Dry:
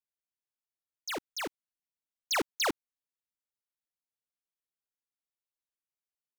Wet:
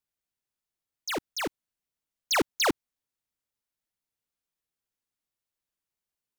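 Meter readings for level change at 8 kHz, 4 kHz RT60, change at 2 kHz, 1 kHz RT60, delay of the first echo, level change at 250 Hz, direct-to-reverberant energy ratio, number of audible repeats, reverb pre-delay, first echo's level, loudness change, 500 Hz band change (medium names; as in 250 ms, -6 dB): +4.0 dB, no reverb, +4.0 dB, no reverb, no echo, +6.5 dB, no reverb, no echo, no reverb, no echo, +4.0 dB, +5.5 dB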